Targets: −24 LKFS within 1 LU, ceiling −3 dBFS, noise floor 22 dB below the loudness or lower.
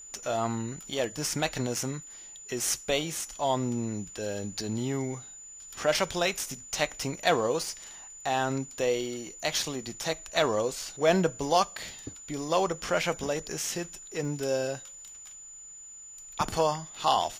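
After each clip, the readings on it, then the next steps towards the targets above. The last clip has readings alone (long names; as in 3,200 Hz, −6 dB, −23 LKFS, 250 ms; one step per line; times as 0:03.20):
number of dropouts 3; longest dropout 1.3 ms; interfering tone 7,000 Hz; level of the tone −44 dBFS; integrated loudness −30.0 LKFS; sample peak −9.5 dBFS; target loudness −24.0 LKFS
→ repair the gap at 0:00.99/0:11.64/0:14.25, 1.3 ms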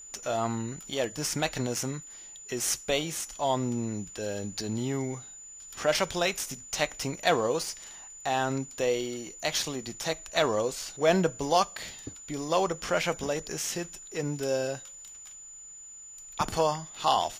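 number of dropouts 0; interfering tone 7,000 Hz; level of the tone −44 dBFS
→ notch filter 7,000 Hz, Q 30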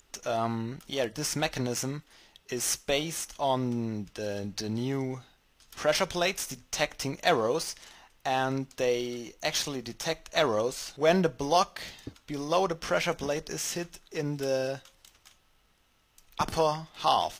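interfering tone none found; integrated loudness −30.0 LKFS; sample peak −10.0 dBFS; target loudness −24.0 LKFS
→ level +6 dB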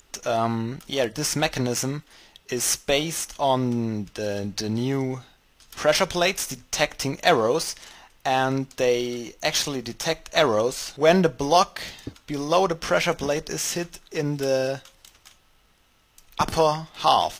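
integrated loudness −24.0 LKFS; sample peak −4.0 dBFS; background noise floor −60 dBFS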